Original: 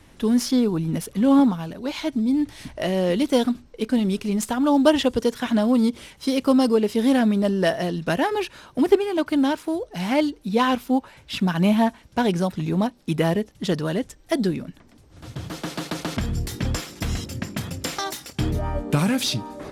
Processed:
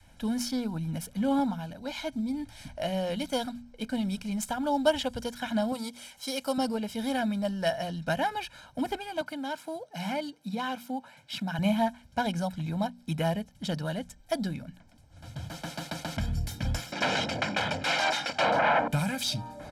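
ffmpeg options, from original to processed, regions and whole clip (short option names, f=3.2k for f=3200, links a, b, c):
-filter_complex "[0:a]asettb=1/sr,asplit=3[a][b][c];[a]atrim=end=5.724[d];[b]atrim=start=5.72:end=6.58,asetpts=PTS-STARTPTS,afade=t=in:d=0.004:c=qsin,afade=t=out:st=0.856:d=0.004:c=qsin,bass=f=250:g=-14,treble=f=4k:g=6,acompressor=mode=upward:threshold=-41dB:ratio=2.5:attack=3.2:release=140:knee=2.83:detection=peak[e];[c]atrim=start=6.576[f];[d][e]acrossfade=d=0.004:c1=hsin:c2=qsin[g];[g][f]acrossfade=d=0.004:c1=qsin:c2=hsin,asettb=1/sr,asplit=3[h][i][j];[h]atrim=end=9.214[k];[i]atrim=start=9.21:end=11.59,asetpts=PTS-STARTPTS,afade=t=in:d=0.004:c=qsin,afade=t=out:st=2.376:d=0.004:c=qsin,acompressor=threshold=-21dB:ratio=4:attack=3.2:release=140:knee=1:detection=peak,highpass=f=130:w=0.5412,highpass=f=130:w=1.3066[l];[j]atrim=start=11.586[m];[k][l]acrossfade=d=0.004:c1=hsin:c2=qsin[n];[n][m]acrossfade=d=0.004:c1=qsin:c2=hsin,asettb=1/sr,asplit=3[o][p][q];[o]atrim=end=16.924[r];[p]atrim=start=16.92:end=18.88,asetpts=PTS-STARTPTS,afade=t=in:d=0.004:c=qsin,afade=t=out:st=1.956:d=0.004:c=qsin,aeval=exprs='0.251*sin(PI/2*7.08*val(0)/0.251)':c=same,highpass=290,lowpass=3k[s];[q]atrim=start=18.876[t];[r][s]acrossfade=d=0.004:c1=hsin:c2=qsin[u];[u][t]acrossfade=d=0.004:c1=qsin:c2=hsin,bandreject=f=60:t=h:w=6,bandreject=f=120:t=h:w=6,bandreject=f=180:t=h:w=6,bandreject=f=240:t=h:w=6,adynamicequalizer=threshold=0.0398:dfrequency=300:dqfactor=0.76:tfrequency=300:tqfactor=0.76:attack=5:release=100:ratio=0.375:range=2.5:mode=cutabove:tftype=bell,aecho=1:1:1.3:0.79,volume=-8dB"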